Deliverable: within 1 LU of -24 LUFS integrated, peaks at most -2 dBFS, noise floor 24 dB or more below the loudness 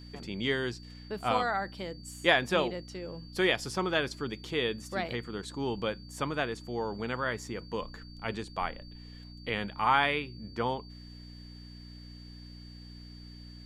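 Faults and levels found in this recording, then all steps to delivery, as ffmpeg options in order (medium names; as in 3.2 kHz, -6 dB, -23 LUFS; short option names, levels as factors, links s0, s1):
hum 60 Hz; highest harmonic 300 Hz; hum level -45 dBFS; steady tone 4.6 kHz; tone level -53 dBFS; loudness -32.0 LUFS; peak level -8.5 dBFS; loudness target -24.0 LUFS
-> -af "bandreject=f=60:t=h:w=4,bandreject=f=120:t=h:w=4,bandreject=f=180:t=h:w=4,bandreject=f=240:t=h:w=4,bandreject=f=300:t=h:w=4"
-af "bandreject=f=4600:w=30"
-af "volume=2.51,alimiter=limit=0.794:level=0:latency=1"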